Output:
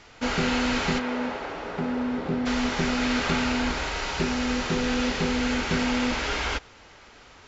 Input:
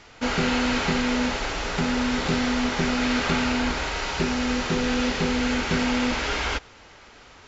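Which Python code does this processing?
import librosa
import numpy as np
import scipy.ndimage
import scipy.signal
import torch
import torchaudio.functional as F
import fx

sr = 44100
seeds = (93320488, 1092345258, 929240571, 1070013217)

y = fx.bandpass_q(x, sr, hz=fx.line((0.98, 740.0), (2.45, 280.0)), q=0.51, at=(0.98, 2.45), fade=0.02)
y = y * 10.0 ** (-1.5 / 20.0)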